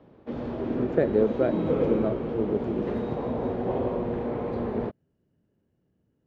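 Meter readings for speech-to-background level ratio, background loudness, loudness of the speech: 1.0 dB, -29.5 LUFS, -28.5 LUFS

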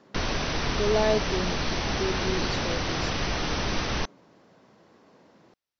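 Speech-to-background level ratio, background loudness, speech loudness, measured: -2.0 dB, -28.5 LUFS, -30.5 LUFS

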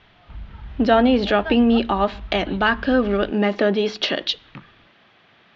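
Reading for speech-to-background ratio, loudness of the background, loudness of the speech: 18.5 dB, -38.0 LUFS, -19.5 LUFS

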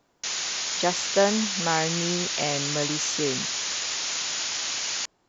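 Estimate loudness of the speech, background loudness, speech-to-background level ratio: -28.0 LUFS, -26.5 LUFS, -1.5 dB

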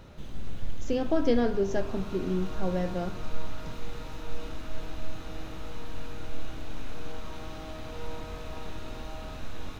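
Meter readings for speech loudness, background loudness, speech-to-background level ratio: -30.0 LUFS, -42.0 LUFS, 12.0 dB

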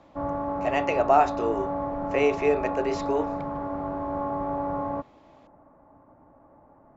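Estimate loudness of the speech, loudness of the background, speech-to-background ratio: -26.0 LUFS, -30.5 LUFS, 4.5 dB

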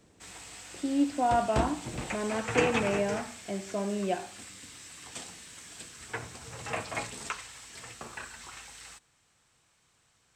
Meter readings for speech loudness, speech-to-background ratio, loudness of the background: -31.0 LUFS, 7.0 dB, -38.0 LUFS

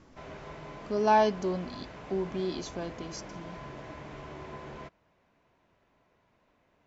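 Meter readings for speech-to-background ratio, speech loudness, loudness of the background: 14.5 dB, -30.5 LUFS, -45.0 LUFS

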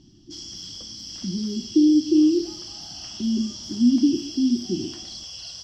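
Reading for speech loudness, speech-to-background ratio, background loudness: -22.0 LUFS, 13.0 dB, -35.0 LUFS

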